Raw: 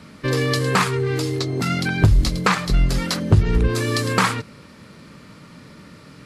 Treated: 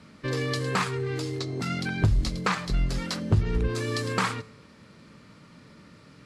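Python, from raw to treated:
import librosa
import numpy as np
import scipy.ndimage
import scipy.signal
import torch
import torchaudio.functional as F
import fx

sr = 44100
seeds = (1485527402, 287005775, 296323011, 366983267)

y = scipy.signal.sosfilt(scipy.signal.butter(2, 9500.0, 'lowpass', fs=sr, output='sos'), x)
y = fx.comb_fb(y, sr, f0_hz=110.0, decay_s=0.7, harmonics='all', damping=0.0, mix_pct=40)
y = F.gain(torch.from_numpy(y), -4.0).numpy()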